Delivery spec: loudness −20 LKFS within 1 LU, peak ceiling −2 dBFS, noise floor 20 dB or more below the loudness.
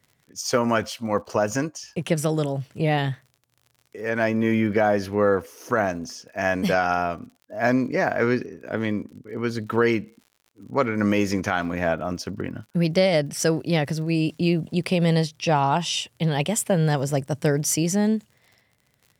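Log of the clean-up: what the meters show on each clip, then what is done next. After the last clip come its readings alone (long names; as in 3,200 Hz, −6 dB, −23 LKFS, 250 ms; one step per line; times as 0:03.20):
crackle rate 49 per second; integrated loudness −24.0 LKFS; sample peak −8.5 dBFS; target loudness −20.0 LKFS
→ click removal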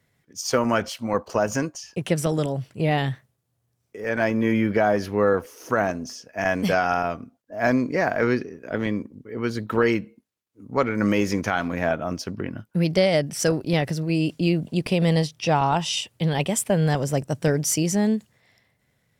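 crackle rate 0.57 per second; integrated loudness −24.0 LKFS; sample peak −8.5 dBFS; target loudness −20.0 LKFS
→ level +4 dB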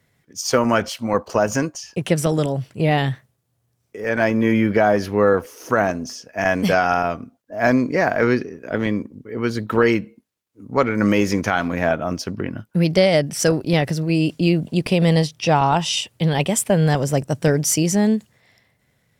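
integrated loudness −20.0 LKFS; sample peak −4.5 dBFS; background noise floor −68 dBFS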